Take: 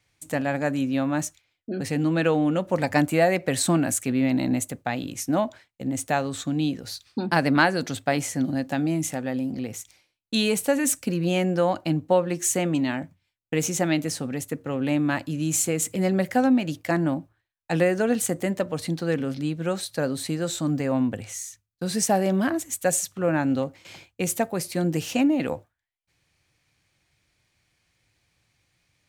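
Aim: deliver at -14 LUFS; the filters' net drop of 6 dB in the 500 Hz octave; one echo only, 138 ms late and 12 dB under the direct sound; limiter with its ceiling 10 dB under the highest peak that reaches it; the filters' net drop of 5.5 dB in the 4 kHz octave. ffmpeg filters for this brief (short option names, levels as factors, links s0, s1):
-af "equalizer=f=500:t=o:g=-7.5,equalizer=f=4000:t=o:g=-7,alimiter=limit=0.141:level=0:latency=1,aecho=1:1:138:0.251,volume=5.01"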